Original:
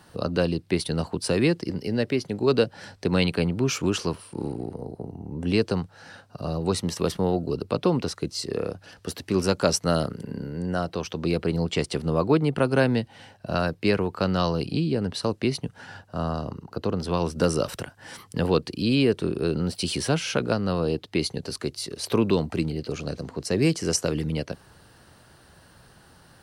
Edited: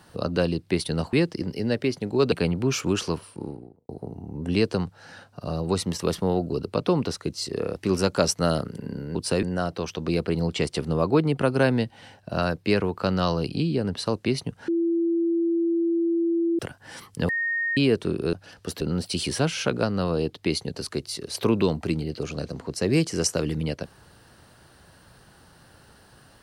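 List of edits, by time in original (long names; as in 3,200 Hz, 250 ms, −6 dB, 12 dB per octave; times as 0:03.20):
0:01.13–0:01.41: move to 0:10.60
0:02.60–0:03.29: remove
0:04.14–0:04.86: fade out and dull
0:08.73–0:09.21: move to 0:19.50
0:15.85–0:17.76: beep over 336 Hz −20 dBFS
0:18.46–0:18.94: beep over 1,850 Hz −23 dBFS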